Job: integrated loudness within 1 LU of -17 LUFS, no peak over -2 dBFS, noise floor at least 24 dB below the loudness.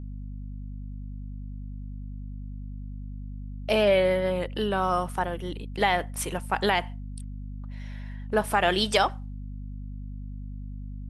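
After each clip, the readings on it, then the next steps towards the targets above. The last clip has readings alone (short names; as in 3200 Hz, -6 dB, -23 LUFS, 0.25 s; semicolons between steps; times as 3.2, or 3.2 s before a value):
hum 50 Hz; harmonics up to 250 Hz; hum level -34 dBFS; loudness -25.5 LUFS; peak -8.0 dBFS; loudness target -17.0 LUFS
-> de-hum 50 Hz, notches 5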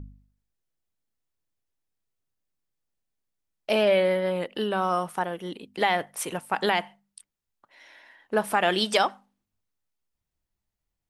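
hum none; loudness -25.5 LUFS; peak -8.0 dBFS; loudness target -17.0 LUFS
-> gain +8.5 dB; limiter -2 dBFS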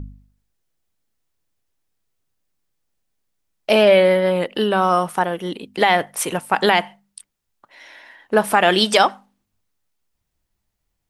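loudness -17.5 LUFS; peak -2.0 dBFS; noise floor -76 dBFS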